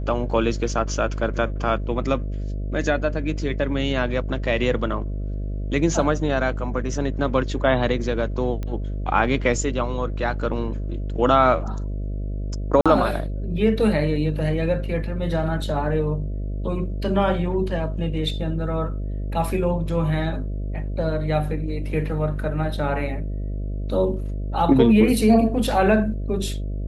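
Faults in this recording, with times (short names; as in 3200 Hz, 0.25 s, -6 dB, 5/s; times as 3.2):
buzz 50 Hz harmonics 13 -27 dBFS
8.63 pop -18 dBFS
12.81–12.86 gap 46 ms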